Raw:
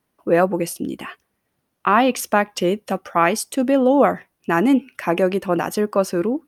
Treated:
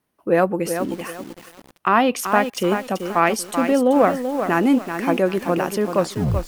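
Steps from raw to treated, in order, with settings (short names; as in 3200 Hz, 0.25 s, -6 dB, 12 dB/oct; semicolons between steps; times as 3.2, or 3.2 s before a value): tape stop at the end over 0.50 s; added harmonics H 3 -26 dB, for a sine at -2.5 dBFS; lo-fi delay 0.384 s, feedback 35%, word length 6-bit, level -7.5 dB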